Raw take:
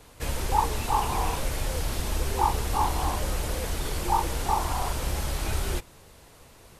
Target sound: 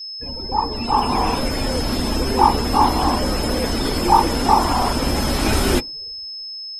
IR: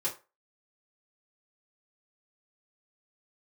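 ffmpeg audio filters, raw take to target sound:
-af "dynaudnorm=f=240:g=7:m=6.31,lowshelf=f=180:g=-7.5,aeval=exprs='val(0)+0.0316*sin(2*PI*5200*n/s)':c=same,afftdn=nr=26:nf=-31,equalizer=f=250:t=o:w=0.6:g=13.5,volume=1.12"

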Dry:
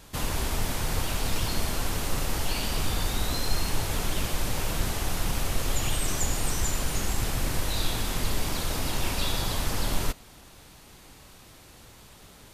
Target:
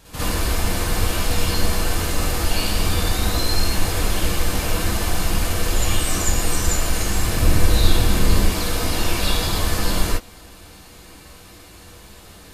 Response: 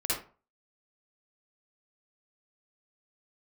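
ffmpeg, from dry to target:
-filter_complex "[0:a]asettb=1/sr,asplit=3[s0][s1][s2];[s0]atrim=end=7.364[s3];[s1]atrim=start=7.36:end=8.45,asetpts=PTS-STARTPTS,afade=t=in:d=0.004:c=qsin,afade=t=out:st=1.086:d=0.004:c=qsin,lowshelf=f=400:g=6.5[s4];[s2]atrim=start=8.446[s5];[s3][s4]acrossfade=d=0.004:c1=hsin:c2=qsin[s6];[s6][s5]acrossfade=d=0.004:c1=qsin:c2=hsin[s7];[1:a]atrim=start_sample=2205,atrim=end_sample=3528[s8];[s7][s8]afir=irnorm=-1:irlink=0,volume=1.19"

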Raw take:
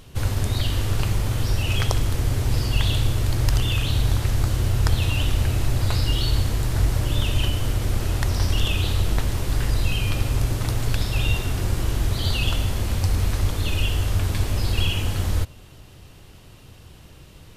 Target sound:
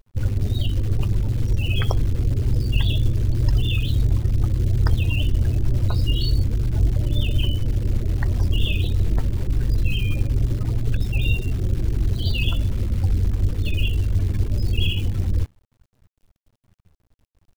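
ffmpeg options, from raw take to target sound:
-af "afftdn=nr=35:nf=-26,acrusher=bits=8:dc=4:mix=0:aa=0.000001,volume=1.19"

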